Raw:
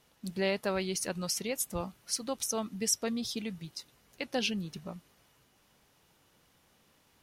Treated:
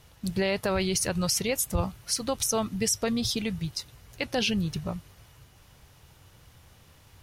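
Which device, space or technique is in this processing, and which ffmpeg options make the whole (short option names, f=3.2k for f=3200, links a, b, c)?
car stereo with a boomy subwoofer: -af "lowshelf=f=150:t=q:w=1.5:g=11,alimiter=level_in=0.5dB:limit=-24dB:level=0:latency=1:release=32,volume=-0.5dB,volume=8.5dB"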